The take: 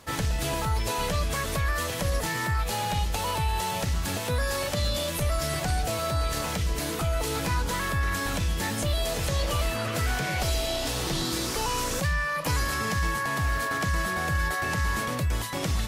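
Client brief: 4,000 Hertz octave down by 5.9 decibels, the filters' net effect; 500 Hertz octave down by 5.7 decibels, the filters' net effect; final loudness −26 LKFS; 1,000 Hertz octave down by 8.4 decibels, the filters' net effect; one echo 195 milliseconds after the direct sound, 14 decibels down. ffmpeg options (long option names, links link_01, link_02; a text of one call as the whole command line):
ffmpeg -i in.wav -af "equalizer=frequency=500:width_type=o:gain=-4,equalizer=frequency=1000:width_type=o:gain=-9,equalizer=frequency=4000:width_type=o:gain=-7,aecho=1:1:195:0.2,volume=4dB" out.wav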